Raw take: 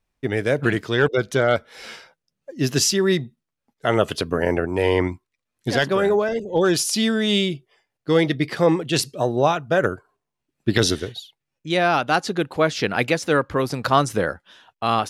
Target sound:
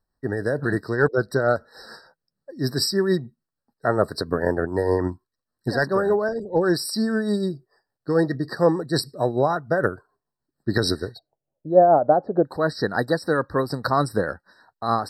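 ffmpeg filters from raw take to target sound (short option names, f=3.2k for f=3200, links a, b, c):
-filter_complex "[0:a]asplit=3[a][b][c];[a]afade=t=out:st=11.17:d=0.02[d];[b]lowpass=f=620:t=q:w=4.2,afade=t=in:st=11.17:d=0.02,afade=t=out:st=12.44:d=0.02[e];[c]afade=t=in:st=12.44:d=0.02[f];[d][e][f]amix=inputs=3:normalize=0,tremolo=f=6.7:d=0.44,afftfilt=real='re*eq(mod(floor(b*sr/1024/1900),2),0)':imag='im*eq(mod(floor(b*sr/1024/1900),2),0)':win_size=1024:overlap=0.75"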